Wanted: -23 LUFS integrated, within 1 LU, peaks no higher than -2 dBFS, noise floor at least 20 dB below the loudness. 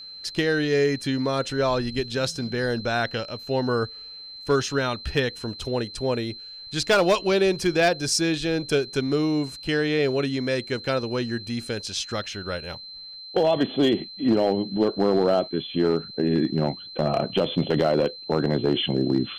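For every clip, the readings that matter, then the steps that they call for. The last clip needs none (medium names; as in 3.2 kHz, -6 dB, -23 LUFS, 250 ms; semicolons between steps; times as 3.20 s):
clipped samples 0.5%; clipping level -13.0 dBFS; steady tone 4.1 kHz; tone level -38 dBFS; loudness -24.5 LUFS; peak level -13.0 dBFS; loudness target -23.0 LUFS
-> clip repair -13 dBFS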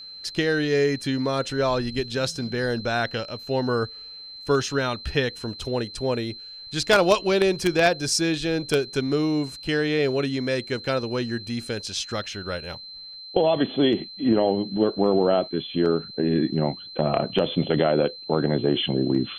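clipped samples 0.0%; steady tone 4.1 kHz; tone level -38 dBFS
-> band-stop 4.1 kHz, Q 30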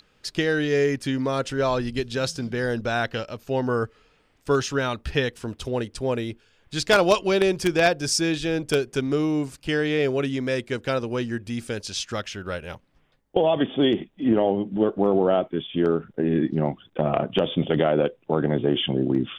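steady tone not found; loudness -24.5 LUFS; peak level -4.0 dBFS; loudness target -23.0 LUFS
-> trim +1.5 dB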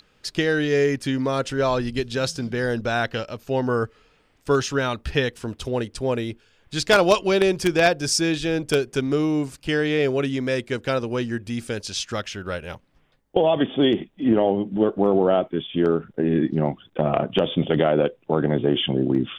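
loudness -23.0 LUFS; peak level -2.5 dBFS; noise floor -62 dBFS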